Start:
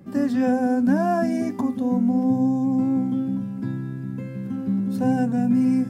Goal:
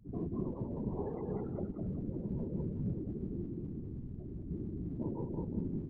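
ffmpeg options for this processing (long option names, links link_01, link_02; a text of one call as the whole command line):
ffmpeg -i in.wav -filter_complex "[0:a]acompressor=threshold=-21dB:ratio=10,asplit=2[link_01][link_02];[link_02]asetrate=88200,aresample=44100,atempo=0.5,volume=-9dB[link_03];[link_01][link_03]amix=inputs=2:normalize=0,afftfilt=real='re*gte(hypot(re,im),0.0398)':imag='im*gte(hypot(re,im),0.0398)':win_size=1024:overlap=0.75,equalizer=frequency=570:width_type=o:width=0.64:gain=3.5,asplit=2[link_04][link_05];[link_05]aecho=0:1:191|382|573|764:0.596|0.203|0.0689|0.0234[link_06];[link_04][link_06]amix=inputs=2:normalize=0,tremolo=f=2:d=0.3,asetrate=26222,aresample=44100,atempo=1.68179,acrossover=split=160|1000|3600[link_07][link_08][link_09][link_10];[link_07]acompressor=threshold=-36dB:ratio=4[link_11];[link_08]acompressor=threshold=-28dB:ratio=4[link_12];[link_09]acompressor=threshold=-52dB:ratio=4[link_13];[link_11][link_12][link_13][link_10]amix=inputs=4:normalize=0,afftfilt=real='hypot(re,im)*cos(2*PI*random(0))':imag='hypot(re,im)*sin(2*PI*random(1))':win_size=512:overlap=0.75,adynamicequalizer=threshold=0.00112:dfrequency=1600:dqfactor=0.7:tfrequency=1600:tqfactor=0.7:attack=5:release=100:ratio=0.375:range=2.5:mode=boostabove:tftype=highshelf,volume=-3dB" out.wav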